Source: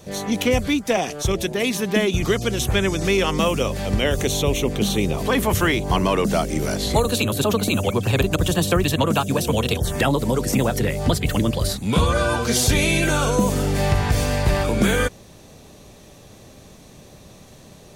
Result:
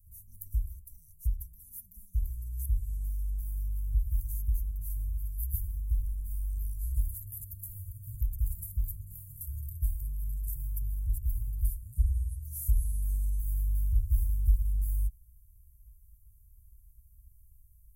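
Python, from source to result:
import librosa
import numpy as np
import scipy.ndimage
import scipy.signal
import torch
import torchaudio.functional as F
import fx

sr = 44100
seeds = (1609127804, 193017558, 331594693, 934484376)

y = scipy.signal.sosfilt(scipy.signal.cheby2(4, 80, [330.0, 3100.0], 'bandstop', fs=sr, output='sos'), x)
y = fx.high_shelf(y, sr, hz=5500.0, db=-4.0)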